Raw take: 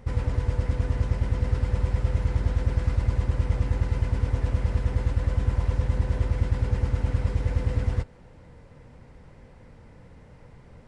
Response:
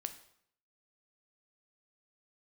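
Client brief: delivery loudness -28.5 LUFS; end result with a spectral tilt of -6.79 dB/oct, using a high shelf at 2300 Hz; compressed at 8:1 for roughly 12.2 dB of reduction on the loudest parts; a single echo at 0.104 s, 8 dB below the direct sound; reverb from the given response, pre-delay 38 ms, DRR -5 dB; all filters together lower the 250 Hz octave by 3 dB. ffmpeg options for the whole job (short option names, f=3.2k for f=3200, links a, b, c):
-filter_complex "[0:a]equalizer=f=250:t=o:g=-4.5,highshelf=f=2.3k:g=8.5,acompressor=threshold=-31dB:ratio=8,aecho=1:1:104:0.398,asplit=2[a][b];[1:a]atrim=start_sample=2205,adelay=38[c];[b][c]afir=irnorm=-1:irlink=0,volume=6.5dB[d];[a][d]amix=inputs=2:normalize=0,volume=1dB"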